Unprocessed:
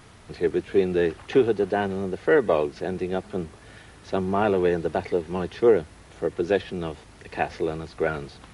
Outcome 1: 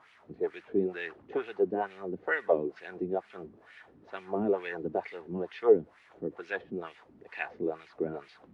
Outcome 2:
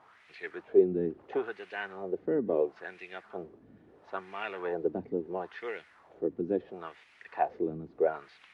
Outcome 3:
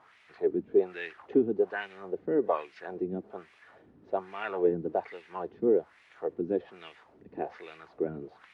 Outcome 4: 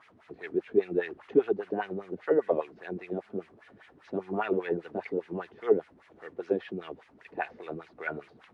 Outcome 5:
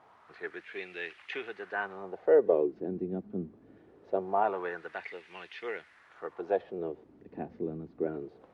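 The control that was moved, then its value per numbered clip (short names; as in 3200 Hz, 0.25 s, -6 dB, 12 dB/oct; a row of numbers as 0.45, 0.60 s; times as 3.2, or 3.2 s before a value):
wah, rate: 2.2, 0.74, 1.2, 5, 0.23 Hz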